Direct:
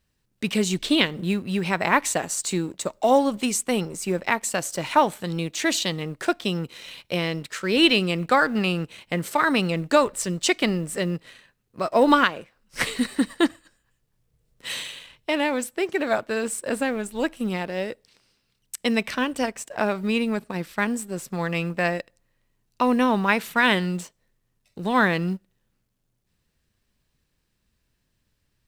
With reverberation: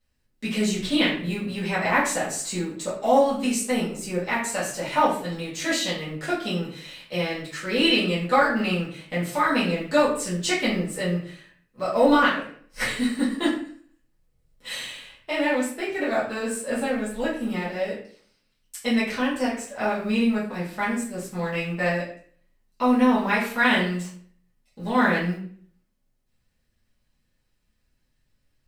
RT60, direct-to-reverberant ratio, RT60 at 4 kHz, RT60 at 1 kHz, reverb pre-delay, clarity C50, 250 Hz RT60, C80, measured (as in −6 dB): 0.50 s, −10.0 dB, 0.40 s, 0.50 s, 4 ms, 5.0 dB, 0.60 s, 9.0 dB